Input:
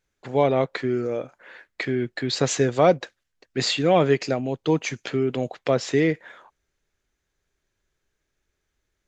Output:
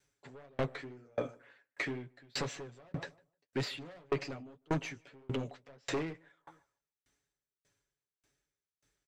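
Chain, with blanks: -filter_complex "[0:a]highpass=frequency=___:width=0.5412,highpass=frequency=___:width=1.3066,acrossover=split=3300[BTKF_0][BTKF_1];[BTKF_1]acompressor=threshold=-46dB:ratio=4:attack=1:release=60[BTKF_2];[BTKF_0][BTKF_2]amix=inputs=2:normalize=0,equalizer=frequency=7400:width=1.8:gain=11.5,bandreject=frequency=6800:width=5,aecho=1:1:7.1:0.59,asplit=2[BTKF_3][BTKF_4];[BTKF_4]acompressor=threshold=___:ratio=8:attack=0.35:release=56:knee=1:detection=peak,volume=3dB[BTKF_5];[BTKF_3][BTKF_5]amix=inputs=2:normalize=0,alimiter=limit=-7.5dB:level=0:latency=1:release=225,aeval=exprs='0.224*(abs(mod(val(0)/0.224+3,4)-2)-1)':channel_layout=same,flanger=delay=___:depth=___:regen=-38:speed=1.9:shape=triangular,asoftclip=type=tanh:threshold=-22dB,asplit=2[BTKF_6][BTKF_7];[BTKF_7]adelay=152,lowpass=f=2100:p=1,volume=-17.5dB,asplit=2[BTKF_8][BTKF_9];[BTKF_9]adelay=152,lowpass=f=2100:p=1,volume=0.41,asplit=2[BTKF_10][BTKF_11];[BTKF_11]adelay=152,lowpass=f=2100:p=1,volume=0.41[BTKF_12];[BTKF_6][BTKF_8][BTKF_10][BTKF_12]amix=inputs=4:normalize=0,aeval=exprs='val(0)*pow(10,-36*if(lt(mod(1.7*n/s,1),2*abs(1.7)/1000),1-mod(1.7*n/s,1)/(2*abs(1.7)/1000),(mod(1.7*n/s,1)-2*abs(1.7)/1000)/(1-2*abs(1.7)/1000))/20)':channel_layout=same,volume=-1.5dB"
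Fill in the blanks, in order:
42, 42, -29dB, 4.7, 8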